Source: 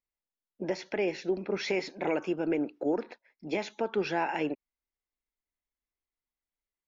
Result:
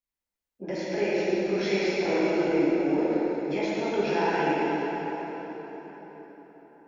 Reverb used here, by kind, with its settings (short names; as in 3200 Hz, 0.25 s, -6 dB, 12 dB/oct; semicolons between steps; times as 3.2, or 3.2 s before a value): plate-style reverb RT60 4.9 s, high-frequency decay 0.65×, DRR -9.5 dB; gain -4.5 dB